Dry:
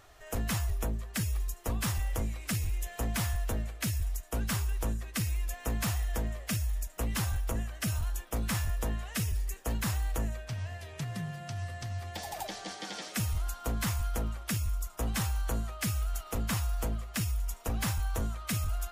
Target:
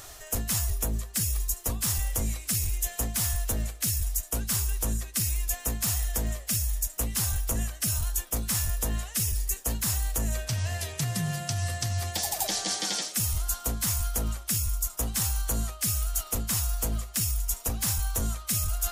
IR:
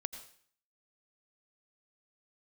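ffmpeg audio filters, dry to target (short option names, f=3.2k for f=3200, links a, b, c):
-af "bass=f=250:g=1,treble=f=4k:g=14,areverse,acompressor=threshold=-34dB:ratio=6,areverse,volume=8.5dB"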